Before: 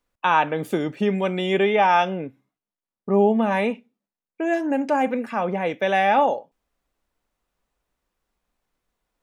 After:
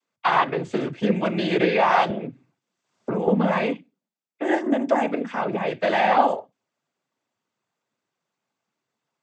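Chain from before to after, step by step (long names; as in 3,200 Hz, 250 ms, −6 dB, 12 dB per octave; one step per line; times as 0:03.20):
cochlear-implant simulation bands 16
0:02.10–0:03.28: multiband upward and downward compressor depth 100%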